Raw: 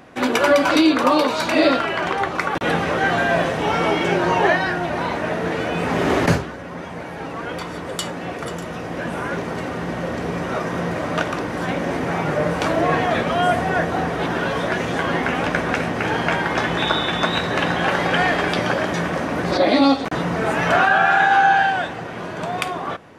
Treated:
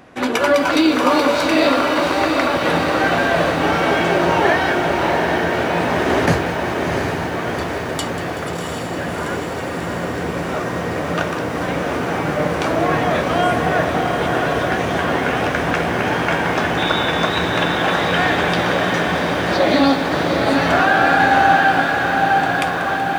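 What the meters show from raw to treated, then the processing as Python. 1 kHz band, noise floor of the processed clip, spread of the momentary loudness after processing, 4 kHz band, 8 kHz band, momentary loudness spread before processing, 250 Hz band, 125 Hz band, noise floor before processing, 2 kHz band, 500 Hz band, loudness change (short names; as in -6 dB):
+2.5 dB, -24 dBFS, 9 LU, +2.5 dB, +3.0 dB, 13 LU, +2.5 dB, +2.5 dB, -31 dBFS, +2.5 dB, +3.0 dB, +2.5 dB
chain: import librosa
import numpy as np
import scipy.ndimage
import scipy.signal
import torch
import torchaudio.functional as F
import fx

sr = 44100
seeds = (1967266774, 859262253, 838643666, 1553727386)

y = fx.peak_eq(x, sr, hz=77.0, db=4.5, octaves=0.21)
y = fx.echo_diffused(y, sr, ms=732, feedback_pct=68, wet_db=-4.0)
y = fx.echo_crushed(y, sr, ms=189, feedback_pct=80, bits=6, wet_db=-14)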